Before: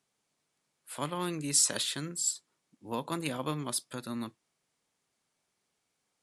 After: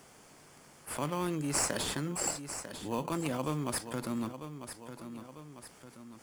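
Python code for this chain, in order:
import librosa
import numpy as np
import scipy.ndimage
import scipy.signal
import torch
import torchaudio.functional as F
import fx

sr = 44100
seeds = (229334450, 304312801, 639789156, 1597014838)

p1 = fx.sample_hold(x, sr, seeds[0], rate_hz=3500.0, jitter_pct=0)
p2 = x + (p1 * librosa.db_to_amplitude(-4.0))
p3 = fx.peak_eq(p2, sr, hz=3900.0, db=-10.0, octaves=0.21)
p4 = fx.echo_feedback(p3, sr, ms=947, feedback_pct=27, wet_db=-20.0)
p5 = fx.env_flatten(p4, sr, amount_pct=50)
y = p5 * librosa.db_to_amplitude(-7.0)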